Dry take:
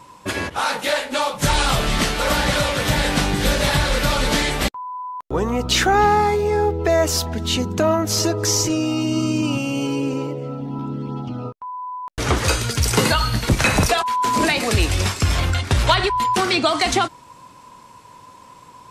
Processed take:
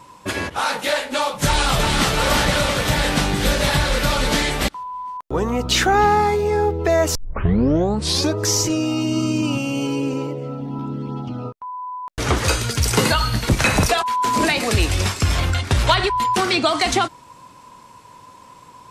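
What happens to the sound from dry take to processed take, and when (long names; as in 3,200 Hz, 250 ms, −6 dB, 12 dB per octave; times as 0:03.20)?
0:01.45–0:02.11: delay throw 340 ms, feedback 60%, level −3.5 dB
0:07.15: tape start 1.22 s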